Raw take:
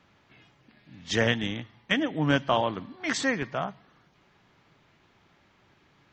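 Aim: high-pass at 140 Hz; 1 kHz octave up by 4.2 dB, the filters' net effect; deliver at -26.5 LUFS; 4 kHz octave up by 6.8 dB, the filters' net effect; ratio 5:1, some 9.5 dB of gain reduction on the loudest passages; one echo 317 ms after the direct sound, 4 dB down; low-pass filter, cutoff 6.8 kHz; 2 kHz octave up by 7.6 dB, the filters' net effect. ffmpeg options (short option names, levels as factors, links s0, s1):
-af "highpass=140,lowpass=6800,equalizer=f=1000:t=o:g=3.5,equalizer=f=2000:t=o:g=6.5,equalizer=f=4000:t=o:g=6.5,acompressor=threshold=0.0562:ratio=5,aecho=1:1:317:0.631,volume=1.33"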